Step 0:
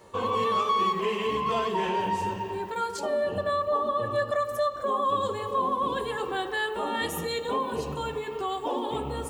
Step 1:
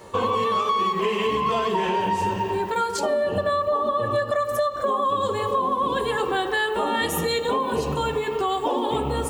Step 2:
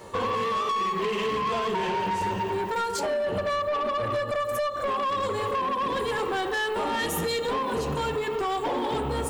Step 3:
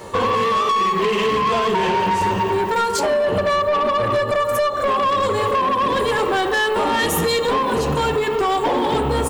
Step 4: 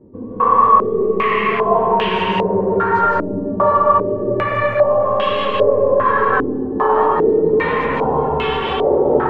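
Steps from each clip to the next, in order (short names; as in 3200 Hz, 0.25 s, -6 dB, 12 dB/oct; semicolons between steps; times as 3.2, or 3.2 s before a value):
compressor, threshold -28 dBFS, peak gain reduction 7 dB; gain +8.5 dB
soft clip -23 dBFS, distortion -12 dB
outdoor echo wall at 290 m, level -14 dB; gain +8.5 dB
digital reverb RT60 3.6 s, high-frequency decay 0.3×, pre-delay 0.115 s, DRR -7 dB; stepped low-pass 2.5 Hz 280–3000 Hz; gain -9 dB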